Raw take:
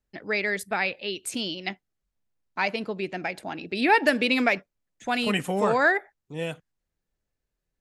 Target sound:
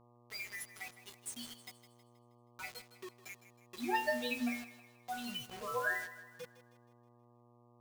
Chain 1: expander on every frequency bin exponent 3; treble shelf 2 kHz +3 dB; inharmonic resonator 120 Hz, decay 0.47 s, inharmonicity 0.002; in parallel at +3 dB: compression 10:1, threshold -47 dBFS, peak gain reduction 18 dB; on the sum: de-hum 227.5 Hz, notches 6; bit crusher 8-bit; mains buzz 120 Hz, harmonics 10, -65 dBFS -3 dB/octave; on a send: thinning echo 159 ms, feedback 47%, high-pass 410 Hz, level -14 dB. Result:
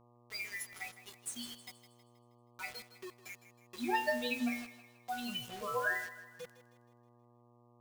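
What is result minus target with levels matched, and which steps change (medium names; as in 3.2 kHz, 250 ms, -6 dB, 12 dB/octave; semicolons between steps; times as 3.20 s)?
compression: peak gain reduction -7 dB
change: compression 10:1, threshold -55 dBFS, peak gain reduction 25.5 dB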